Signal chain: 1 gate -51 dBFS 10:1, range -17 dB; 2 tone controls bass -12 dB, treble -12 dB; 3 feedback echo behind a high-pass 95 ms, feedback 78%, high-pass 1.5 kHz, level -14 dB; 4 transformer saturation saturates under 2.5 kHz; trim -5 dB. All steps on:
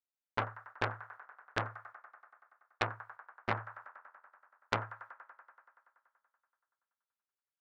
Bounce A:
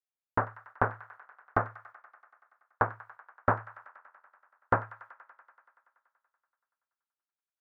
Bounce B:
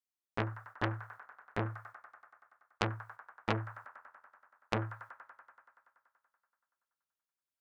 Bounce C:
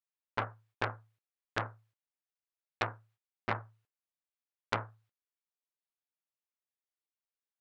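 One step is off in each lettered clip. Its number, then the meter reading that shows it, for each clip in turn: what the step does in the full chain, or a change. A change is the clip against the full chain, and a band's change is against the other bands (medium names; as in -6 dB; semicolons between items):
4, crest factor change -5.0 dB; 2, 250 Hz band +6.5 dB; 3, momentary loudness spread change -11 LU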